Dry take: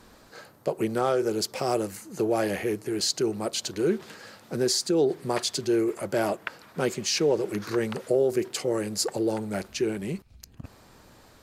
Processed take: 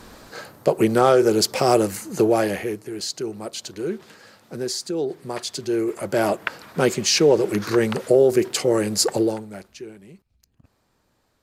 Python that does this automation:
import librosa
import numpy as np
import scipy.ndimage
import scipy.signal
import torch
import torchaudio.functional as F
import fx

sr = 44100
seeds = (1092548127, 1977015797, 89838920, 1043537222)

y = fx.gain(x, sr, db=fx.line((2.18, 9.0), (2.9, -2.5), (5.36, -2.5), (6.46, 7.5), (9.21, 7.5), (9.46, -5.0), (10.08, -14.0)))